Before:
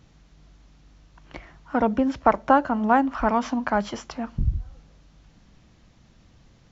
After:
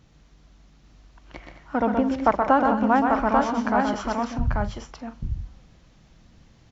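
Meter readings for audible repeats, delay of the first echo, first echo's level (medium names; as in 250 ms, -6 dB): 4, 125 ms, -5.0 dB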